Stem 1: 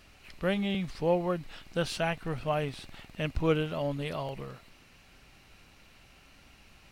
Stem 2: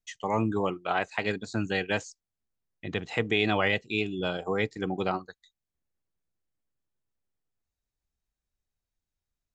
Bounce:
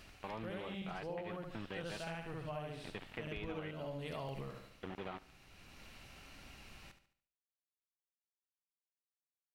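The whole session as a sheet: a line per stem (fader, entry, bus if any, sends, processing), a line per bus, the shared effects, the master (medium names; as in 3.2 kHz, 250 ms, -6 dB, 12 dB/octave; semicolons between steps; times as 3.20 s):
+1.0 dB, 0.00 s, no send, echo send -11 dB, auto duck -12 dB, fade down 0.45 s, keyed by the second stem
-13.0 dB, 0.00 s, muted 3.71–4.83 s, no send, echo send -23 dB, bit crusher 5-bit; steep low-pass 3.4 kHz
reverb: none
echo: feedback delay 72 ms, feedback 40%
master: compression 6:1, threshold -40 dBFS, peak gain reduction 13 dB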